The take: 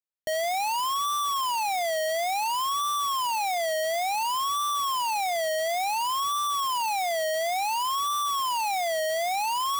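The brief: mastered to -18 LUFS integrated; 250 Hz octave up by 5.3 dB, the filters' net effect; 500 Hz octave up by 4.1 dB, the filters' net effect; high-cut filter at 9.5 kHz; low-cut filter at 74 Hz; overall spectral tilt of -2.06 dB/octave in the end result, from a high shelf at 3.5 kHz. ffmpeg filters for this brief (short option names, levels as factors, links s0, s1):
-af "highpass=74,lowpass=9500,equalizer=f=250:t=o:g=5,equalizer=f=500:t=o:g=6,highshelf=f=3500:g=-4.5,volume=2.37"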